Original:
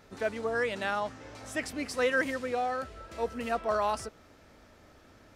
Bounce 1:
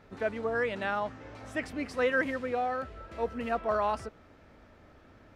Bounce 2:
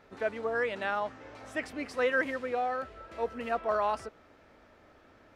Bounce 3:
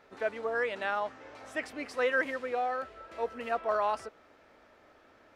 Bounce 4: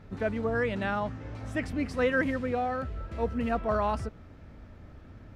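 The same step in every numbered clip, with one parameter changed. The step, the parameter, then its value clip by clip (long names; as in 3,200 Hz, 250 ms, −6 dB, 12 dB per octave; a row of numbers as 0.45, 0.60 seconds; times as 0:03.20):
bass and treble, bass: +2, −6, −14, +14 decibels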